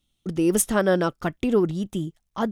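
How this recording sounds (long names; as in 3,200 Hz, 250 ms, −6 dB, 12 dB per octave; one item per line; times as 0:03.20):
background noise floor −75 dBFS
spectral slope −5.0 dB per octave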